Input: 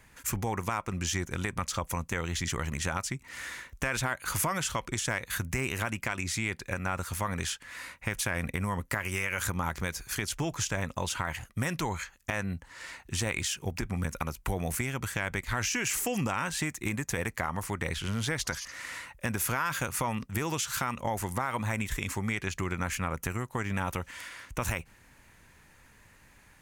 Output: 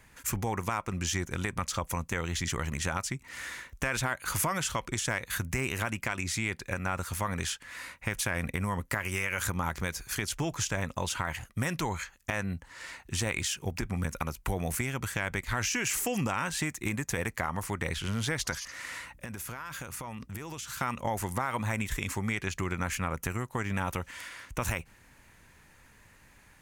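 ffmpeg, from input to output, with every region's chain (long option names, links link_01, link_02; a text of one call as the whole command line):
ffmpeg -i in.wav -filter_complex "[0:a]asettb=1/sr,asplit=3[link_01][link_02][link_03];[link_01]atrim=end=19.014[link_04];[link_02]atrim=start=19.01:end=20.81,asetpts=PTS-STARTPTS,afade=type=in:duration=0.004:curve=qsin,afade=type=out:start_time=1.796:duration=0.004:curve=qsin,acompressor=threshold=-36dB:ratio=6:attack=3.2:release=140:knee=1:detection=peak,aeval=exprs='val(0)+0.000891*(sin(2*PI*60*n/s)+sin(2*PI*2*60*n/s)/2+sin(2*PI*3*60*n/s)/3+sin(2*PI*4*60*n/s)/4+sin(2*PI*5*60*n/s)/5)':channel_layout=same[link_05];[link_03]atrim=start=20.806[link_06];[link_04][link_05]acrossfade=duration=0.004:curve1=hsin:curve2=qsin[link_07];[link_07][link_06]acrossfade=duration=0.004:curve1=qsin:curve2=hsin" out.wav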